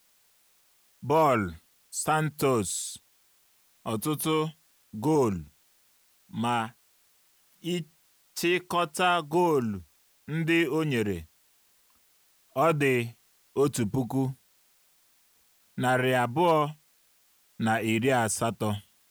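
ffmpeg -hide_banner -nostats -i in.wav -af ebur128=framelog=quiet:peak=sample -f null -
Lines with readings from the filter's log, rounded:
Integrated loudness:
  I:         -27.5 LUFS
  Threshold: -39.3 LUFS
Loudness range:
  LRA:         4.6 LU
  Threshold: -49.4 LUFS
  LRA low:   -31.9 LUFS
  LRA high:  -27.3 LUFS
Sample peak:
  Peak:      -11.9 dBFS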